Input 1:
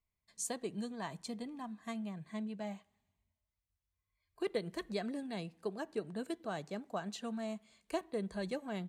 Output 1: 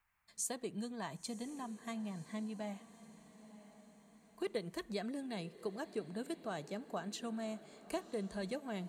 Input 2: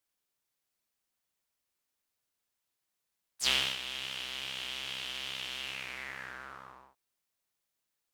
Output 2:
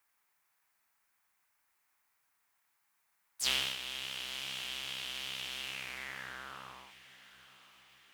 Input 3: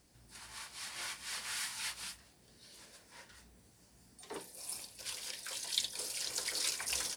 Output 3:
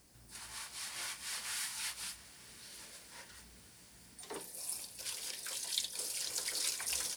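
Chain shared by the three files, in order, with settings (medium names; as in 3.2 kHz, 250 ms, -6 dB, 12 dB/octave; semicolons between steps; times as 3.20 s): treble shelf 8.4 kHz +7 dB; in parallel at +0.5 dB: compression, threshold -44 dBFS; on the sum: band noise 770–2400 Hz -78 dBFS; echo that smears into a reverb 1029 ms, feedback 49%, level -16 dB; trim -5 dB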